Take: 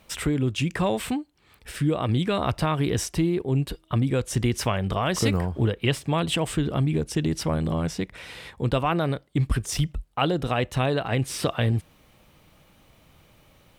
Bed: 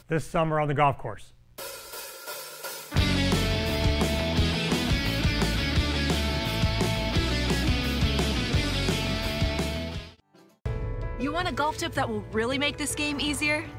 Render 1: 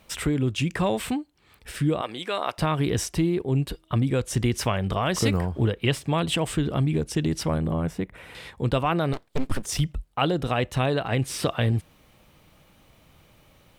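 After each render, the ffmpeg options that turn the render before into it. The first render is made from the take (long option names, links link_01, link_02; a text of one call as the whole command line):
ffmpeg -i in.wav -filter_complex "[0:a]asettb=1/sr,asplit=3[link_01][link_02][link_03];[link_01]atrim=end=2.014[link_04];[link_02]atrim=start=2.01:end=2.58,asetpts=PTS-STARTPTS,afade=type=in:duration=0.004:curve=qsin,afade=type=out:start_time=0.566:duration=0.004:curve=qsin,highpass=510[link_05];[link_03]atrim=start=2.576[link_06];[link_04][link_05]acrossfade=duration=0.004:curve1=hsin:curve2=qsin[link_07];[link_07][link_06]acrossfade=duration=0.004:curve1=qsin:curve2=hsin,asettb=1/sr,asplit=3[link_08][link_09][link_10];[link_08]atrim=end=7.584[link_11];[link_09]atrim=start=7.58:end=8.35,asetpts=PTS-STARTPTS,afade=type=in:duration=0.004:curve=qsin,afade=type=out:start_time=0.766:duration=0.004:curve=qsin,equalizer=frequency=5100:width_type=o:width=1.5:gain=-13.5[link_12];[link_10]atrim=start=8.346[link_13];[link_11][link_12]acrossfade=duration=0.004:curve1=hsin:curve2=qsin[link_14];[link_14][link_13]acrossfade=duration=0.004:curve1=qsin:curve2=hsin,asettb=1/sr,asplit=3[link_15][link_16][link_17];[link_15]atrim=end=9.134[link_18];[link_16]atrim=start=9.13:end=9.65,asetpts=PTS-STARTPTS,afade=type=in:duration=0.004:curve=qsin,afade=type=out:start_time=0.516:duration=0.004:curve=qsin,aeval=exprs='abs(val(0))':channel_layout=same[link_19];[link_17]atrim=start=9.646[link_20];[link_18][link_19]acrossfade=duration=0.004:curve1=hsin:curve2=qsin[link_21];[link_21][link_20]acrossfade=duration=0.004:curve1=qsin:curve2=hsin" out.wav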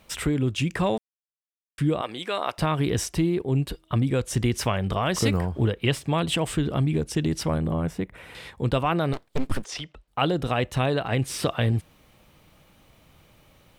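ffmpeg -i in.wav -filter_complex "[0:a]asettb=1/sr,asplit=3[link_01][link_02][link_03];[link_01]atrim=end=9.644[link_04];[link_02]atrim=start=9.64:end=10.08,asetpts=PTS-STARTPTS,afade=type=in:duration=0.004:curve=qsin,afade=type=out:start_time=0.436:duration=0.004:curve=qsin,acrossover=split=350 5900:gain=0.112 1 0.0794[link_05][link_06][link_07];[link_05][link_06][link_07]amix=inputs=3:normalize=0[link_08];[link_03]atrim=start=10.076[link_09];[link_04][link_08]acrossfade=duration=0.004:curve1=hsin:curve2=qsin[link_10];[link_10][link_09]acrossfade=duration=0.004:curve1=qsin:curve2=hsin,asplit=3[link_11][link_12][link_13];[link_11]atrim=end=0.98,asetpts=PTS-STARTPTS,afade=type=out:start_time=0.976:duration=0.004:curve=hsin[link_14];[link_12]atrim=start=0.98:end=1.78,asetpts=PTS-STARTPTS,volume=0[link_15];[link_13]atrim=start=1.78,asetpts=PTS-STARTPTS,afade=type=in:duration=0.004:curve=hsin[link_16];[link_14][link_15][link_16]concat=n=3:v=0:a=1" out.wav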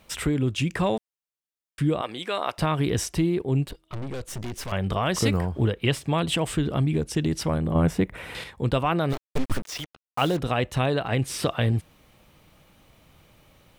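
ffmpeg -i in.wav -filter_complex "[0:a]asettb=1/sr,asplit=3[link_01][link_02][link_03];[link_01]atrim=end=3.674[link_04];[link_02]atrim=start=3.67:end=4.72,asetpts=PTS-STARTPTS,afade=type=in:duration=0.004:curve=qsin,afade=type=out:start_time=1.046:duration=0.004:curve=qsin,aeval=exprs='(tanh(35.5*val(0)+0.8)-tanh(0.8))/35.5':channel_layout=same[link_05];[link_03]atrim=start=4.716[link_06];[link_04][link_05]acrossfade=duration=0.004:curve1=hsin:curve2=qsin[link_07];[link_07][link_06]acrossfade=duration=0.004:curve1=qsin:curve2=hsin,asettb=1/sr,asplit=3[link_08][link_09][link_10];[link_08]atrim=end=7.754[link_11];[link_09]atrim=start=7.75:end=8.44,asetpts=PTS-STARTPTS,afade=type=in:duration=0.004:curve=qsin,afade=type=out:start_time=0.686:duration=0.004:curve=qsin,acontrast=56[link_12];[link_10]atrim=start=8.436[link_13];[link_11][link_12]acrossfade=duration=0.004:curve1=hsin:curve2=qsin[link_14];[link_14][link_13]acrossfade=duration=0.004:curve1=qsin:curve2=hsin,asplit=3[link_15][link_16][link_17];[link_15]afade=type=out:start_time=9.09:duration=0.02[link_18];[link_16]acrusher=bits=5:mix=0:aa=0.5,afade=type=in:start_time=9.09:duration=0.02,afade=type=out:start_time=10.38:duration=0.02[link_19];[link_17]afade=type=in:start_time=10.38:duration=0.02[link_20];[link_18][link_19][link_20]amix=inputs=3:normalize=0" out.wav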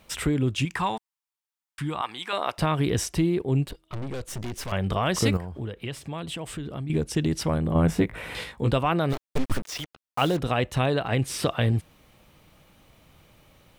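ffmpeg -i in.wav -filter_complex "[0:a]asettb=1/sr,asplit=3[link_01][link_02][link_03];[link_01]atrim=end=0.654[link_04];[link_02]atrim=start=0.65:end=2.33,asetpts=PTS-STARTPTS,afade=type=in:duration=0.004:curve=qsin,afade=type=out:start_time=1.676:duration=0.004:curve=qsin,lowshelf=frequency=710:width_type=q:width=3:gain=-6.5[link_05];[link_03]atrim=start=2.326[link_06];[link_04][link_05]acrossfade=duration=0.004:curve1=hsin:curve2=qsin[link_07];[link_07][link_06]acrossfade=duration=0.004:curve1=qsin:curve2=hsin,asettb=1/sr,asplit=3[link_08][link_09][link_10];[link_08]atrim=end=5.374[link_11];[link_09]atrim=start=5.37:end=6.9,asetpts=PTS-STARTPTS,afade=type=in:duration=0.004:curve=qsin,afade=type=out:start_time=1.526:duration=0.004:curve=qsin,acompressor=threshold=-38dB:ratio=2:attack=3.2:release=140:knee=1:detection=peak[link_12];[link_10]atrim=start=6.896[link_13];[link_11][link_12]acrossfade=duration=0.004:curve1=hsin:curve2=qsin[link_14];[link_14][link_13]acrossfade=duration=0.004:curve1=qsin:curve2=hsin,asettb=1/sr,asplit=3[link_15][link_16][link_17];[link_15]atrim=end=7.874[link_18];[link_16]atrim=start=7.87:end=8.73,asetpts=PTS-STARTPTS,afade=type=in:duration=0.004:curve=qsin,afade=type=out:start_time=0.856:duration=0.004:curve=qsin,asplit=2[link_19][link_20];[link_20]adelay=18,volume=-4dB[link_21];[link_19][link_21]amix=inputs=2:normalize=0,atrim=end_sample=37926[link_22];[link_17]atrim=start=8.726[link_23];[link_18][link_22]acrossfade=duration=0.004:curve1=hsin:curve2=qsin[link_24];[link_24][link_23]acrossfade=duration=0.004:curve1=qsin:curve2=hsin" out.wav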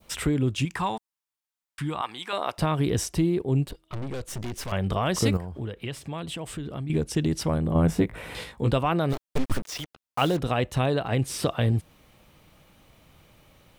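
ffmpeg -i in.wav -af "adynamicequalizer=threshold=0.00708:dfrequency=2100:dqfactor=0.73:tfrequency=2100:tqfactor=0.73:attack=5:release=100:ratio=0.375:range=2:mode=cutabove:tftype=bell" out.wav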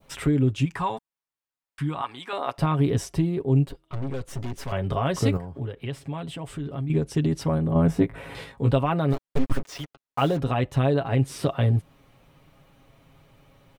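ffmpeg -i in.wav -af "highshelf=frequency=2700:gain=-8.5,aecho=1:1:7.3:0.57" out.wav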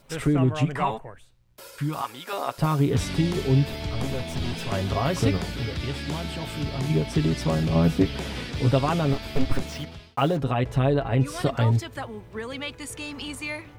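ffmpeg -i in.wav -i bed.wav -filter_complex "[1:a]volume=-7dB[link_01];[0:a][link_01]amix=inputs=2:normalize=0" out.wav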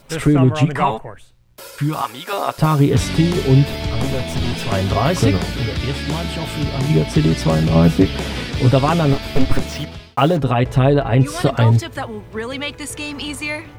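ffmpeg -i in.wav -af "volume=8dB,alimiter=limit=-2dB:level=0:latency=1" out.wav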